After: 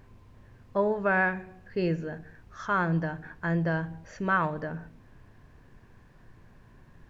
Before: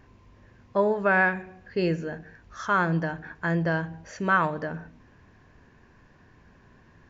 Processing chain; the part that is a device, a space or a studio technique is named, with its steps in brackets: car interior (peaking EQ 120 Hz +6 dB 0.67 oct; treble shelf 4.2 kHz -6.5 dB; brown noise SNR 24 dB); trim -3 dB

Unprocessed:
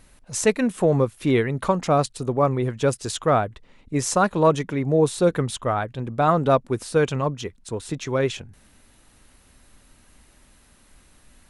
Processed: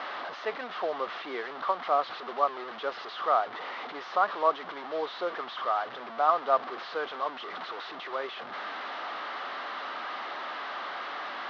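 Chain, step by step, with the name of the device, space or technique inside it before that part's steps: digital answering machine (band-pass 360–3300 Hz; one-bit delta coder 32 kbps, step -23 dBFS; cabinet simulation 480–3600 Hz, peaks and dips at 490 Hz -3 dB, 730 Hz +5 dB, 1.2 kHz +8 dB, 2.5 kHz -7 dB); trim -8 dB

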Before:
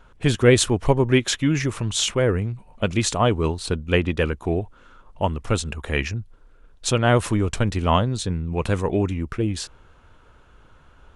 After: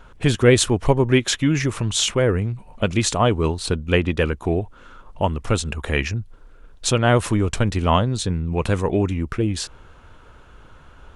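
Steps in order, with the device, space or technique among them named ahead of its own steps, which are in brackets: parallel compression (in parallel at -1 dB: compression, threshold -31 dBFS, peak gain reduction 20 dB)

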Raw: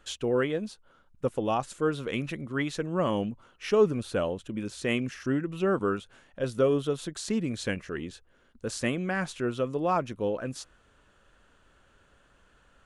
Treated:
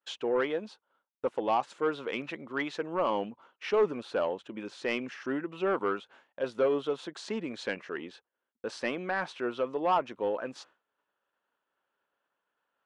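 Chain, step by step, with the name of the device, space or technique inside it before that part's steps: intercom (band-pass 340–3900 Hz; peaking EQ 900 Hz +6.5 dB 0.5 oct; saturation -18 dBFS, distortion -17 dB); 7.89–9.91 s: band-stop 7 kHz, Q 11; expander -51 dBFS

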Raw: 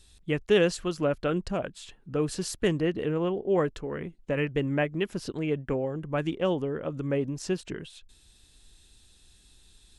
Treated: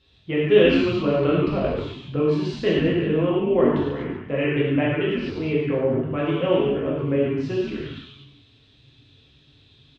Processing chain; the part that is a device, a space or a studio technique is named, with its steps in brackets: frequency-shifting delay pedal into a guitar cabinet (frequency-shifting echo 141 ms, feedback 31%, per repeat -150 Hz, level -4 dB; cabinet simulation 81–3600 Hz, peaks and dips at 170 Hz -8 dB, 810 Hz -4 dB, 1.6 kHz -5 dB); 1.23–2.20 s: bass shelf 160 Hz +9.5 dB; gated-style reverb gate 140 ms flat, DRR -5 dB

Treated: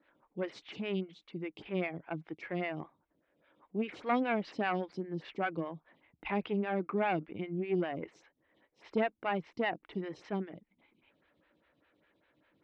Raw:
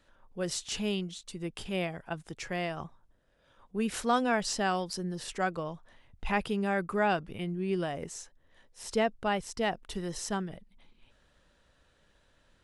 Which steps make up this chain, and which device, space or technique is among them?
vibe pedal into a guitar amplifier (lamp-driven phase shifter 5 Hz; valve stage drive 20 dB, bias 0.5; cabinet simulation 96–3700 Hz, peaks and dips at 160 Hz +4 dB, 310 Hz +10 dB, 2.2 kHz +9 dB)

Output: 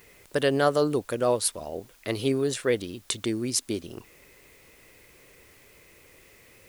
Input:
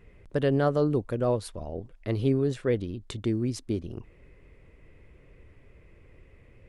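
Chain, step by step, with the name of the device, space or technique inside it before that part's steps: turntable without a phono preamp (RIAA curve recording; white noise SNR 30 dB); trim +5 dB

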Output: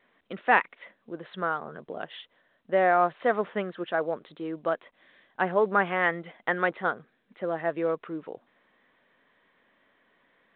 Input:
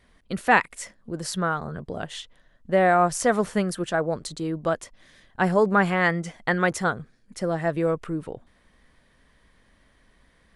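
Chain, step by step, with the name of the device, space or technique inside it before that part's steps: telephone (band-pass 310–3300 Hz; trim -2.5 dB; µ-law 64 kbps 8 kHz)

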